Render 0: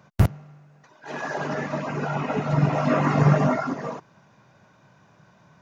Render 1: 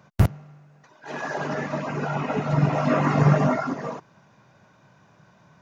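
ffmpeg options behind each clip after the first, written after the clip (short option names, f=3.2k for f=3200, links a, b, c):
-af anull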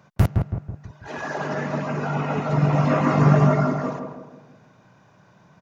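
-filter_complex "[0:a]asplit=2[a][b];[b]adelay=163,lowpass=f=1.1k:p=1,volume=-3.5dB,asplit=2[c][d];[d]adelay=163,lowpass=f=1.1k:p=1,volume=0.49,asplit=2[e][f];[f]adelay=163,lowpass=f=1.1k:p=1,volume=0.49,asplit=2[g][h];[h]adelay=163,lowpass=f=1.1k:p=1,volume=0.49,asplit=2[i][j];[j]adelay=163,lowpass=f=1.1k:p=1,volume=0.49,asplit=2[k][l];[l]adelay=163,lowpass=f=1.1k:p=1,volume=0.49[m];[a][c][e][g][i][k][m]amix=inputs=7:normalize=0"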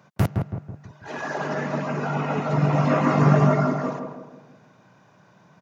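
-af "highpass=120"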